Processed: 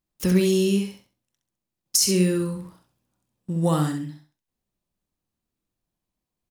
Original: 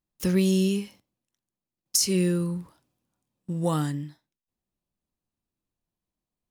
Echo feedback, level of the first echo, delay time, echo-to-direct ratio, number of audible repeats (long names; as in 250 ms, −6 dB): 27%, −6.0 dB, 66 ms, −5.5 dB, 3